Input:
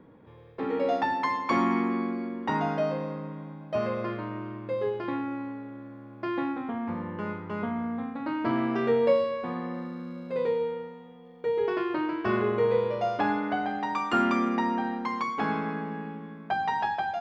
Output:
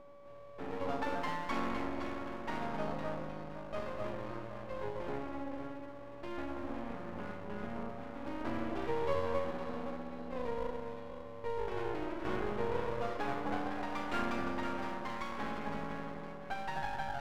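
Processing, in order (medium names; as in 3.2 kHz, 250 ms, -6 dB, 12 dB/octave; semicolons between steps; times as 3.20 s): whistle 570 Hz -41 dBFS; echo whose repeats swap between lows and highs 256 ms, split 930 Hz, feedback 58%, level -2 dB; half-wave rectifier; trim -7.5 dB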